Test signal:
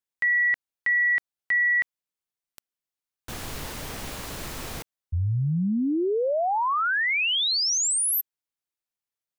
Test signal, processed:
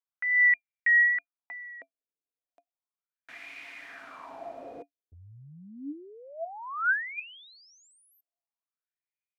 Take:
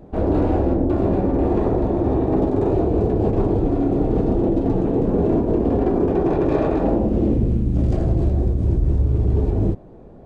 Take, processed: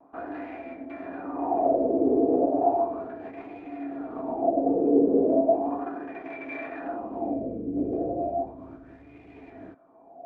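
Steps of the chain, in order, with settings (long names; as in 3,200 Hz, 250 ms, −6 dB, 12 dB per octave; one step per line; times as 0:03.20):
LFO wah 0.35 Hz 440–2,200 Hz, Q 5.5
hollow resonant body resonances 280/680/2,400 Hz, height 16 dB, ringing for 100 ms
pitch vibrato 0.89 Hz 39 cents
level +2.5 dB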